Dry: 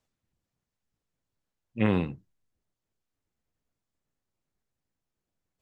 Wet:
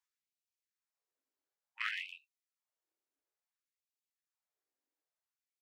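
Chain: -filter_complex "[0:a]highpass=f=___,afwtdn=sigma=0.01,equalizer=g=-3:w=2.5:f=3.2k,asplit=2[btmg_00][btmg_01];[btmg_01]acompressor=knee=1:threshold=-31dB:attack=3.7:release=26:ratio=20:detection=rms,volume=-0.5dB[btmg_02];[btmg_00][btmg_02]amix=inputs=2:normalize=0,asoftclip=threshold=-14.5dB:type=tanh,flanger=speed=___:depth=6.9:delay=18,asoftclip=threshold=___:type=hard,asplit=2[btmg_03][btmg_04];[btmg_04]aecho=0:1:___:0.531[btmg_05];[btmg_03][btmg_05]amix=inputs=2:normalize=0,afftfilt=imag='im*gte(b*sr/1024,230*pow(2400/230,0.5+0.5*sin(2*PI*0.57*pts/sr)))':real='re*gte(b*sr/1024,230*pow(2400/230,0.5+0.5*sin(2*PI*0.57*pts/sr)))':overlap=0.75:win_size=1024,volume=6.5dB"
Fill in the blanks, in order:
51, 0.86, -20dB, 117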